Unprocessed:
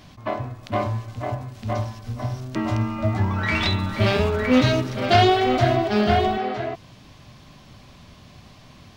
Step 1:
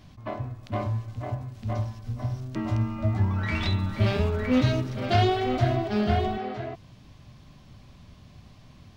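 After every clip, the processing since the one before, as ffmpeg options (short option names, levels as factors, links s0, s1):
-af "lowshelf=f=210:g=9,volume=0.376"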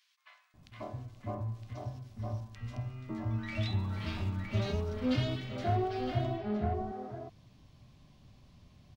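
-filter_complex "[0:a]acrossover=split=1500[s0][s1];[s0]adelay=540[s2];[s2][s1]amix=inputs=2:normalize=0,volume=0.376"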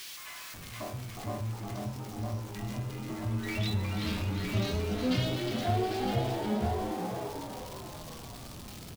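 -filter_complex "[0:a]aeval=exprs='val(0)+0.5*0.00708*sgn(val(0))':c=same,highshelf=f=3700:g=8,asplit=8[s0][s1][s2][s3][s4][s5][s6][s7];[s1]adelay=360,afreqshift=99,volume=0.447[s8];[s2]adelay=720,afreqshift=198,volume=0.245[s9];[s3]adelay=1080,afreqshift=297,volume=0.135[s10];[s4]adelay=1440,afreqshift=396,volume=0.0741[s11];[s5]adelay=1800,afreqshift=495,volume=0.0407[s12];[s6]adelay=2160,afreqshift=594,volume=0.0224[s13];[s7]adelay=2520,afreqshift=693,volume=0.0123[s14];[s0][s8][s9][s10][s11][s12][s13][s14]amix=inputs=8:normalize=0"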